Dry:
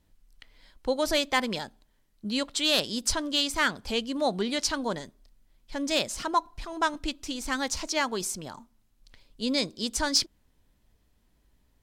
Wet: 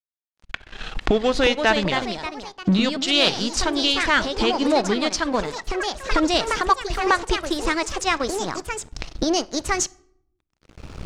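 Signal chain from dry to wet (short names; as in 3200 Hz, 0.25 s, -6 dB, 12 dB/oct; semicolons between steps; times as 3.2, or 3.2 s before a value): speed glide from 76% -> 138%; recorder AGC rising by 23 dB/s; high shelf 9800 Hz +5.5 dB; in parallel at -1 dB: compressor, threshold -35 dBFS, peak gain reduction 16 dB; on the sum: crossover distortion -37 dBFS; on a send at -19 dB: reverb RT60 0.70 s, pre-delay 6 ms; on the sum: echoes that change speed 0.535 s, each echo +3 st, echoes 3, each echo -6 dB; air absorption 110 m; gain +6.5 dB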